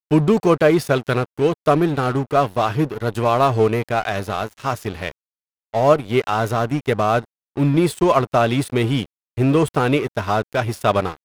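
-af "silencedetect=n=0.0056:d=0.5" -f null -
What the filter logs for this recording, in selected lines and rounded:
silence_start: 5.11
silence_end: 5.73 | silence_duration: 0.62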